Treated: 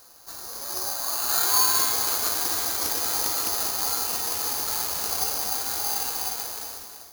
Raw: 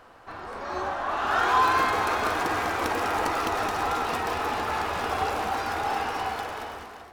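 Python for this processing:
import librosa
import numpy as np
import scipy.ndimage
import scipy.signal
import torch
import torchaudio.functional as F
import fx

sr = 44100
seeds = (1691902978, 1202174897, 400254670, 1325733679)

y = (np.kron(x[::8], np.eye(8)[0]) * 8)[:len(x)]
y = y * 10.0 ** (-8.5 / 20.0)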